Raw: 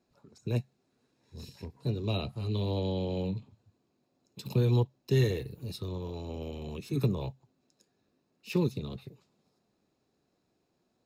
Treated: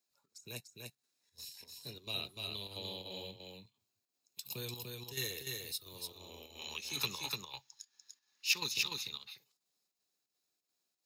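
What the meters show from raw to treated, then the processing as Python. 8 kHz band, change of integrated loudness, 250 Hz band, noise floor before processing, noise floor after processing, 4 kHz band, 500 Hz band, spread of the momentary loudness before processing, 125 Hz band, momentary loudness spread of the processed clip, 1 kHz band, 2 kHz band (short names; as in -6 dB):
+12.0 dB, -7.0 dB, -19.0 dB, -77 dBFS, under -85 dBFS, +7.0 dB, -15.5 dB, 15 LU, -21.0 dB, 19 LU, -5.5 dB, +5.5 dB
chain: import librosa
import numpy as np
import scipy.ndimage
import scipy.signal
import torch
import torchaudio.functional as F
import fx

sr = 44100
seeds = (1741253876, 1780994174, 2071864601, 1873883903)

y = librosa.effects.preemphasis(x, coef=0.97, zi=[0.0])
y = fx.spec_box(y, sr, start_s=6.59, length_s=2.55, low_hz=760.0, high_hz=7000.0, gain_db=11)
y = fx.noise_reduce_blind(y, sr, reduce_db=6)
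y = fx.chopper(y, sr, hz=2.9, depth_pct=60, duty_pct=75)
y = y + 10.0 ** (-3.5 / 20.0) * np.pad(y, (int(295 * sr / 1000.0), 0))[:len(y)]
y = y * 10.0 ** (7.5 / 20.0)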